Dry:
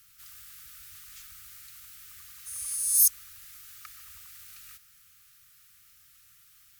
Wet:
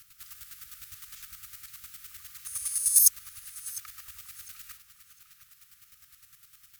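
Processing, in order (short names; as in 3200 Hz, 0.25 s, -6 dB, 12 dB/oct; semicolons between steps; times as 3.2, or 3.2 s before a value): chopper 9.8 Hz, depth 60%, duty 25%; tape echo 0.703 s, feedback 41%, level -12 dB, low-pass 4500 Hz; gain +6 dB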